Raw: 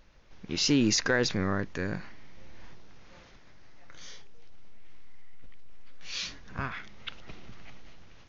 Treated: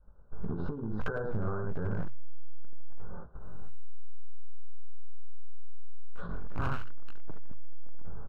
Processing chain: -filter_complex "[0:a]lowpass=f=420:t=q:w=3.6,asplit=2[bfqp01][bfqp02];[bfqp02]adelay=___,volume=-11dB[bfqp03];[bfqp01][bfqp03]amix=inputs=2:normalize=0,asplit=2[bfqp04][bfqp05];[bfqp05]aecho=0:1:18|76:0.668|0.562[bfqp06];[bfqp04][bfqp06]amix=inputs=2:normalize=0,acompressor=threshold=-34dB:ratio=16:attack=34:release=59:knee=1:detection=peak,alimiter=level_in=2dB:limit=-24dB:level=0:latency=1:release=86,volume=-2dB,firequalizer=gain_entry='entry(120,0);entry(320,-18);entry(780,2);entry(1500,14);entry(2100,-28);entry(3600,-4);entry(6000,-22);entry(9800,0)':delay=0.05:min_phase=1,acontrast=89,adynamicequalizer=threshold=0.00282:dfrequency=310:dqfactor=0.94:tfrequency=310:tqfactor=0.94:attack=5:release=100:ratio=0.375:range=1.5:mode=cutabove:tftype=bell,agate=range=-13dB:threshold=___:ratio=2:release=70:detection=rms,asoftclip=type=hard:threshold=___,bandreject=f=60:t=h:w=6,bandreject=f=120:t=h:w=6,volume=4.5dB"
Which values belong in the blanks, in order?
23, -37dB, -28dB